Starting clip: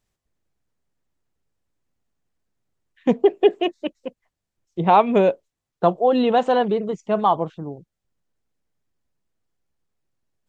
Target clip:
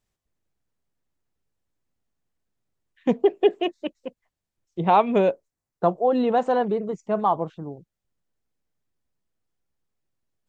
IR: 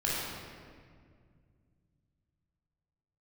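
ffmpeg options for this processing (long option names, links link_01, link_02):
-filter_complex "[0:a]asettb=1/sr,asplit=3[link_01][link_02][link_03];[link_01]atrim=end=5.304[link_04];[link_02]atrim=start=5.3:end=7.48,asetpts=PTS-STARTPTS,afade=type=in:duration=0.004:curve=qsin,afade=type=out:start_time=2.176:duration=0.004:curve=qsin,equalizer=frequency=3200:width_type=o:width=0.85:gain=-8.5[link_05];[link_03]atrim=start=7.476[link_06];[link_04][link_05]acrossfade=duration=0.004:curve1=hsin:curve2=qsin[link_07];[link_07][link_06]acrossfade=duration=0.004:curve1=qsin:curve2=hsin,volume=-3dB"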